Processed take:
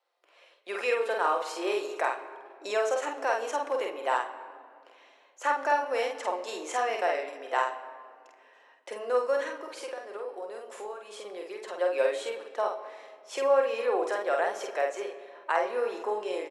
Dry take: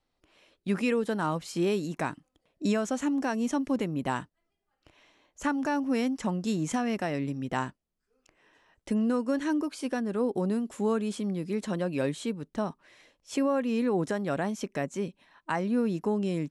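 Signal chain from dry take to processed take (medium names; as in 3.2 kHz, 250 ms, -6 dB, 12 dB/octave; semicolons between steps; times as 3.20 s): steep high-pass 450 Hz 36 dB/octave; treble shelf 3.6 kHz -9.5 dB; 9.44–11.78 s: compression 6:1, threshold -42 dBFS, peak gain reduction 13.5 dB; doubling 48 ms -3 dB; simulated room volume 3800 m³, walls mixed, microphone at 0.85 m; trim +4 dB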